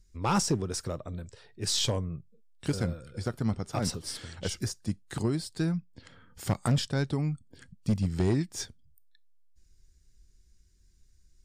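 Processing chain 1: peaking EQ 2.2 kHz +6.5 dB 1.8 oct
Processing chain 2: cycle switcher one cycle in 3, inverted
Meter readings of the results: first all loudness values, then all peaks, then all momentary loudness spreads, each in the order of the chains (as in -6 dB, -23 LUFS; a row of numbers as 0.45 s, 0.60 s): -30.5 LUFS, -31.5 LUFS; -13.5 dBFS, -18.0 dBFS; 12 LU, 11 LU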